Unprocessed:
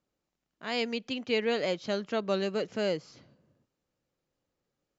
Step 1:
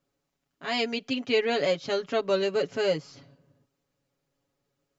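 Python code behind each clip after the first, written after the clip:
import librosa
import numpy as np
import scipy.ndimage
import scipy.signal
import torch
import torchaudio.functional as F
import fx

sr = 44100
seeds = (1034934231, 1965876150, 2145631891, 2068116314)

y = x + 0.92 * np.pad(x, (int(7.2 * sr / 1000.0), 0))[:len(x)]
y = y * 10.0 ** (1.5 / 20.0)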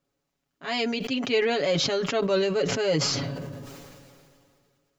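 y = fx.sustainer(x, sr, db_per_s=26.0)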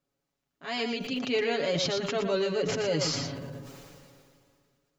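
y = x + 10.0 ** (-6.5 / 20.0) * np.pad(x, (int(117 * sr / 1000.0), 0))[:len(x)]
y = y * 10.0 ** (-4.5 / 20.0)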